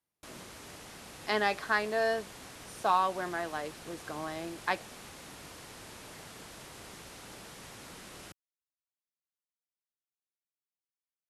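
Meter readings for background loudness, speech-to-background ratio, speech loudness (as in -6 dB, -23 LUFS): -47.0 LUFS, 15.0 dB, -32.0 LUFS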